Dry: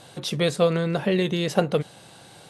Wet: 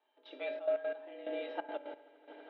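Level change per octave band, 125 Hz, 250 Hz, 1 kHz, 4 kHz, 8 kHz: below −40 dB, −24.0 dB, −14.5 dB, −23.5 dB, below −40 dB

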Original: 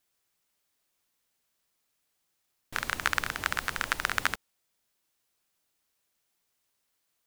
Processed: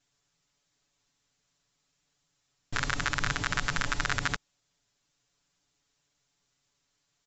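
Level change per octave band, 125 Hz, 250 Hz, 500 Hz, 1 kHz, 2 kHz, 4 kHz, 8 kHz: +10.0, +6.0, +0.5, −0.5, −0.5, +1.0, +1.0 decibels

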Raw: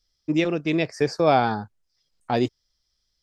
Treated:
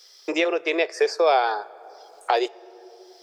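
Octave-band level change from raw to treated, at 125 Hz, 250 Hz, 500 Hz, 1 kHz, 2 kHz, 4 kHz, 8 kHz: below −35 dB, −7.0 dB, +2.0 dB, +1.5 dB, +3.5 dB, +3.5 dB, +3.5 dB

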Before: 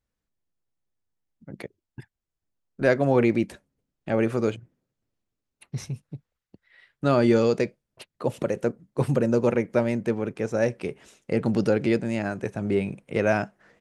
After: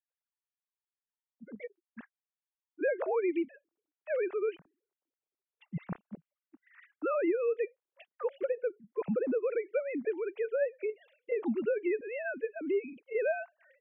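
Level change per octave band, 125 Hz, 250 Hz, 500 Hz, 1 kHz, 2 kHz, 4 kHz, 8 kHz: −21.0 dB, −12.0 dB, −6.5 dB, −10.5 dB, −8.0 dB, below −20 dB, below −30 dB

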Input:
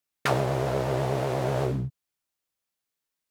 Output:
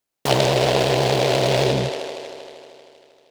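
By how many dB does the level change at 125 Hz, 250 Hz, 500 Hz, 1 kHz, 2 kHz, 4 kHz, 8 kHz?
+4.5, +7.0, +9.0, +7.5, +9.0, +18.0, +13.5 decibels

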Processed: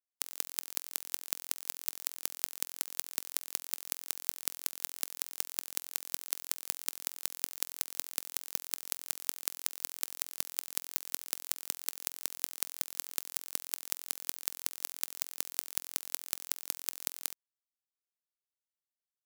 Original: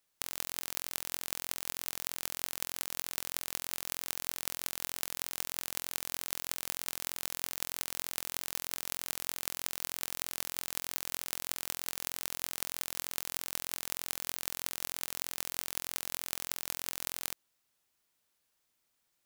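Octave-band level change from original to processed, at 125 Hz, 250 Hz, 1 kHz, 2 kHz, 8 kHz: below −10 dB, −9.5 dB, −5.0 dB, −4.5 dB, +0.5 dB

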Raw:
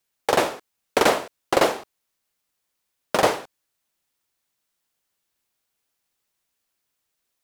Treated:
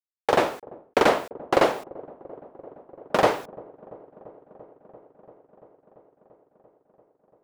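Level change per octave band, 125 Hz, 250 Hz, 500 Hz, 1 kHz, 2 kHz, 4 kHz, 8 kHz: 0.0, 0.0, 0.0, −0.5, −2.0, −4.5, −9.0 decibels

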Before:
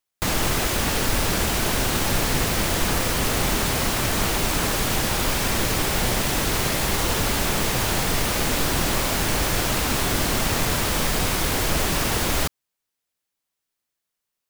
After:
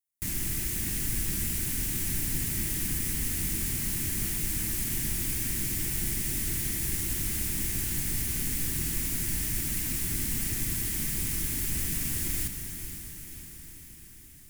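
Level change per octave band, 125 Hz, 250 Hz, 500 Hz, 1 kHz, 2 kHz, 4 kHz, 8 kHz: −8.0, −10.5, −21.0, −26.0, −14.5, −14.5, −5.0 decibels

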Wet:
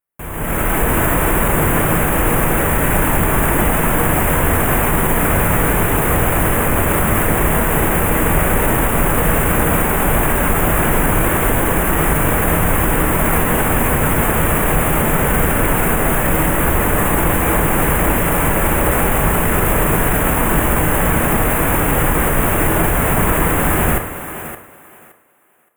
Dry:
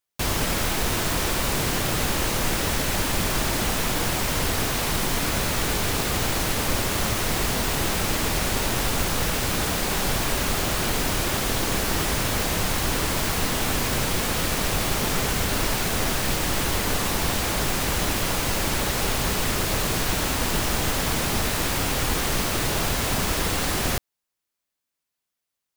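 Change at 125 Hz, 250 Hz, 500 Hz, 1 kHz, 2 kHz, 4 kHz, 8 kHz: +10.5, +10.5, +10.5, +10.5, +8.5, −5.5, +4.0 decibels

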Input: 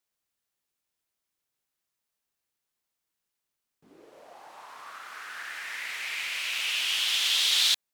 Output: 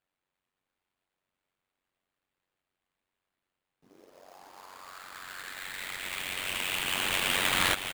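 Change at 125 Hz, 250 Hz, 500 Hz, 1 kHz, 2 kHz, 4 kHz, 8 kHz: can't be measured, +16.5 dB, +11.0 dB, +6.5 dB, +0.5 dB, −7.0 dB, −3.0 dB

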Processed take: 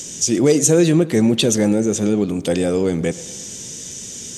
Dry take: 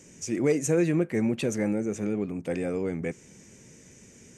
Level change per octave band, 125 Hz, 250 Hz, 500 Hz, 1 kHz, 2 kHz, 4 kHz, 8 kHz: +10.5, +10.5, +10.0, +10.0, +7.5, +20.5, +18.0 decibels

